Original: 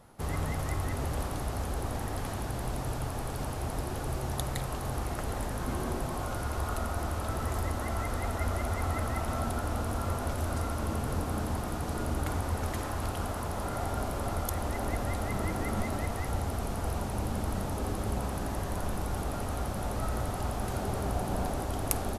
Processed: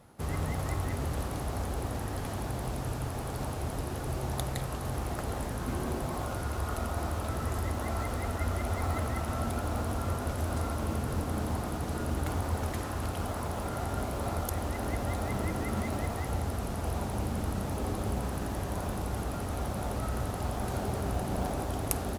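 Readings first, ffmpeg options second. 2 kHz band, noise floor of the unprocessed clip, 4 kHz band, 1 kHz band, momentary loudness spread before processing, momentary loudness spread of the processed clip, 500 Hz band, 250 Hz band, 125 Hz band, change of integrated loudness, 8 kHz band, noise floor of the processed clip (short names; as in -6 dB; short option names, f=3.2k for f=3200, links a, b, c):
-1.0 dB, -35 dBFS, -0.5 dB, -1.0 dB, 3 LU, 3 LU, 0.0 dB, +0.5 dB, +0.5 dB, 0.0 dB, -1.0 dB, -36 dBFS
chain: -filter_complex "[0:a]highpass=46,asplit=2[a][b];[b]acrusher=samples=27:mix=1:aa=0.000001:lfo=1:lforange=27:lforate=1.1,volume=-10dB[c];[a][c]amix=inputs=2:normalize=0,volume=-1.5dB"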